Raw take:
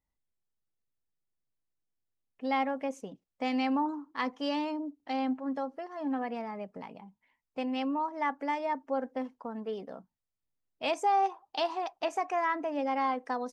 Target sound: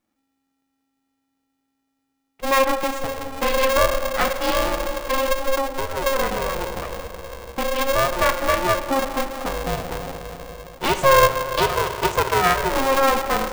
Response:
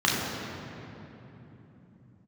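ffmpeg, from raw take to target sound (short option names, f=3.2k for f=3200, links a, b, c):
-filter_complex "[0:a]asplit=2[a][b];[1:a]atrim=start_sample=2205,asetrate=37485,aresample=44100[c];[b][c]afir=irnorm=-1:irlink=0,volume=-21dB[d];[a][d]amix=inputs=2:normalize=0,aeval=exprs='val(0)*sgn(sin(2*PI*270*n/s))':c=same,volume=8.5dB"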